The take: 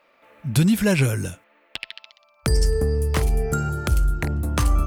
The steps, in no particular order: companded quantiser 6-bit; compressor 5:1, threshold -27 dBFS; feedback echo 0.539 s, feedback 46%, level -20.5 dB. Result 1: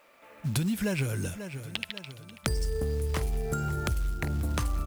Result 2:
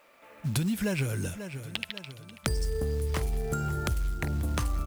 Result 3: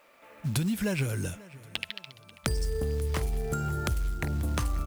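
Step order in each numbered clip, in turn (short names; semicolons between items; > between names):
feedback echo > companded quantiser > compressor; companded quantiser > feedback echo > compressor; companded quantiser > compressor > feedback echo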